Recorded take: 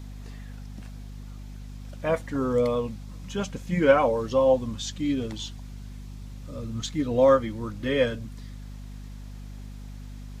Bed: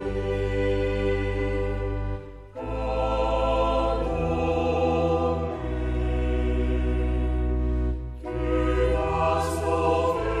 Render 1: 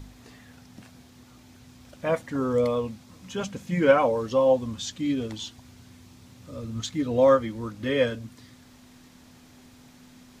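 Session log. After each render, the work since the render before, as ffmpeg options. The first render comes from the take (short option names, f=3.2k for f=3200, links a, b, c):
-af "bandreject=f=50:t=h:w=4,bandreject=f=100:t=h:w=4,bandreject=f=150:t=h:w=4,bandreject=f=200:t=h:w=4"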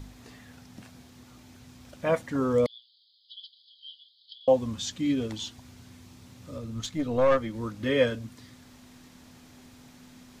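-filter_complex "[0:a]asettb=1/sr,asplit=3[a][b][c];[a]atrim=end=2.664[d];[b]atrim=start=2.66:end=4.48,asetpts=PTS-STARTPTS,afade=t=in:d=0.004:c=qsin,afade=t=out:st=1.816:d=0.004:c=qsin,asuperpass=centerf=3900:order=20:qfactor=2.1[e];[c]atrim=start=4.476[f];[d][e]acrossfade=d=0.004:c1=hsin:c2=qsin[g];[g][f]acrossfade=d=0.004:c1=qsin:c2=hsin,asettb=1/sr,asplit=3[h][i][j];[h]atrim=end=6.584[k];[i]atrim=start=6.58:end=7.54,asetpts=PTS-STARTPTS,afade=t=in:d=0.004:c=qsin,afade=t=out:st=0.956:d=0.004:c=qsin,aeval=exprs='(tanh(6.31*val(0)+0.55)-tanh(0.55))/6.31':c=same[l];[j]atrim=start=7.536[m];[k][l]acrossfade=d=0.004:c1=hsin:c2=qsin[n];[n][m]acrossfade=d=0.004:c1=qsin:c2=hsin"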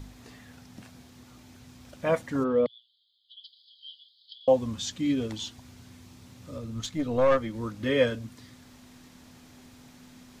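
-filter_complex "[0:a]asplit=3[a][b][c];[a]afade=t=out:st=2.43:d=0.02[d];[b]highpass=110,equalizer=f=120:t=q:w=4:g=-10,equalizer=f=980:t=q:w=4:g=-4,equalizer=f=2.2k:t=q:w=4:g=-7,lowpass=f=3.3k:w=0.5412,lowpass=f=3.3k:w=1.3066,afade=t=in:st=2.43:d=0.02,afade=t=out:st=3.43:d=0.02[e];[c]afade=t=in:st=3.43:d=0.02[f];[d][e][f]amix=inputs=3:normalize=0"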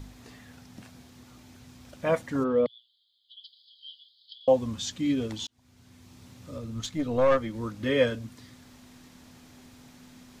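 -filter_complex "[0:a]asplit=2[a][b];[a]atrim=end=5.47,asetpts=PTS-STARTPTS,afade=t=out:st=5.466:d=0.004:c=hsin[c];[b]atrim=start=5.47,asetpts=PTS-STARTPTS,afade=t=in:d=0.77[d];[c][d]concat=n=2:v=0:a=1"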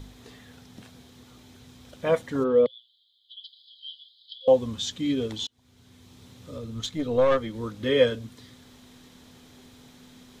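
-af "superequalizer=7b=1.78:13b=1.78"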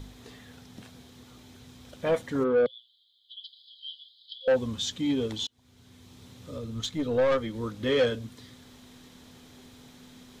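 -af "asoftclip=type=tanh:threshold=-17.5dB"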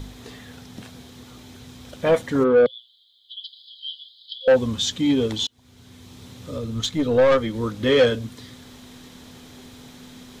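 -af "volume=7.5dB"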